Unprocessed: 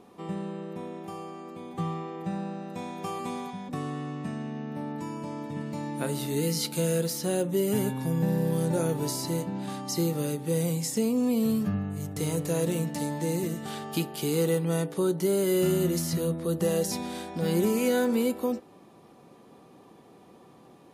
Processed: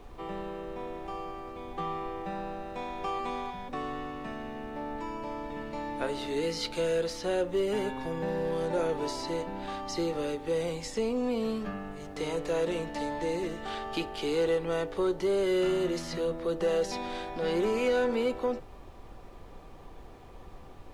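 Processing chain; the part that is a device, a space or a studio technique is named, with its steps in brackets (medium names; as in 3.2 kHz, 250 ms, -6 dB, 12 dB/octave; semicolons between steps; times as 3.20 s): aircraft cabin announcement (band-pass 400–3700 Hz; saturation -22 dBFS, distortion -22 dB; brown noise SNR 15 dB); trim +3 dB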